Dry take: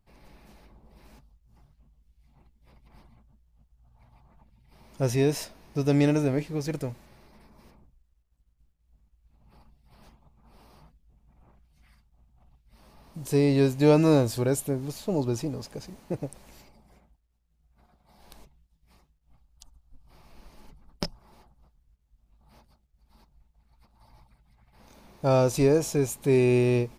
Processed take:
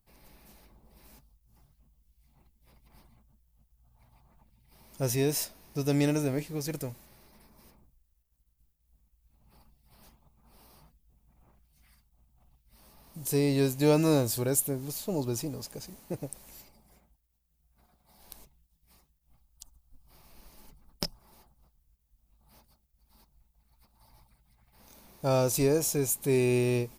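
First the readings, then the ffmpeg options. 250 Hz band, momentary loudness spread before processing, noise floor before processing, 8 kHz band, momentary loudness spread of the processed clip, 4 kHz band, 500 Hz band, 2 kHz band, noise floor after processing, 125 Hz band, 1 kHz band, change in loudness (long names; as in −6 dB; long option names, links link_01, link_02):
−4.5 dB, 16 LU, −70 dBFS, +5.0 dB, 14 LU, +0.5 dB, −4.5 dB, −2.5 dB, −73 dBFS, −4.5 dB, −4.0 dB, −3.5 dB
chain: -af "aemphasis=mode=production:type=50fm,volume=-4dB"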